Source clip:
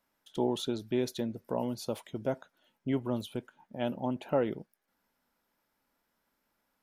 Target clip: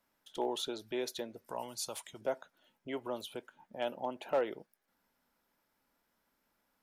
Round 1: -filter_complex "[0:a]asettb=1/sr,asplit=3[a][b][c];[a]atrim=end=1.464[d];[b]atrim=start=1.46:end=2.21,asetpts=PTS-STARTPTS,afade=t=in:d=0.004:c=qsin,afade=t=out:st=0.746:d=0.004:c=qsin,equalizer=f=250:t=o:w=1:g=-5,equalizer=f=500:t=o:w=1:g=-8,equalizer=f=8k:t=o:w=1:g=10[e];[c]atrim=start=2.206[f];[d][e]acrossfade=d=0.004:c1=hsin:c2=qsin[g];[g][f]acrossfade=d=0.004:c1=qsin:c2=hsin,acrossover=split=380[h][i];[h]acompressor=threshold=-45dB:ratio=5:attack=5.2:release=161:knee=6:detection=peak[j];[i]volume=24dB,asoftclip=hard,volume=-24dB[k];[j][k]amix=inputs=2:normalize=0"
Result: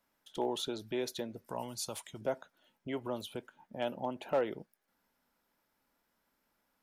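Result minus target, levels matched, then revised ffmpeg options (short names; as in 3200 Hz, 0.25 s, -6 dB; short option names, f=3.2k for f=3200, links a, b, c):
compressor: peak gain reduction -9.5 dB
-filter_complex "[0:a]asettb=1/sr,asplit=3[a][b][c];[a]atrim=end=1.464[d];[b]atrim=start=1.46:end=2.21,asetpts=PTS-STARTPTS,afade=t=in:d=0.004:c=qsin,afade=t=out:st=0.746:d=0.004:c=qsin,equalizer=f=250:t=o:w=1:g=-5,equalizer=f=500:t=o:w=1:g=-8,equalizer=f=8k:t=o:w=1:g=10[e];[c]atrim=start=2.206[f];[d][e]acrossfade=d=0.004:c1=hsin:c2=qsin[g];[g][f]acrossfade=d=0.004:c1=qsin:c2=hsin,acrossover=split=380[h][i];[h]acompressor=threshold=-57dB:ratio=5:attack=5.2:release=161:knee=6:detection=peak[j];[i]volume=24dB,asoftclip=hard,volume=-24dB[k];[j][k]amix=inputs=2:normalize=0"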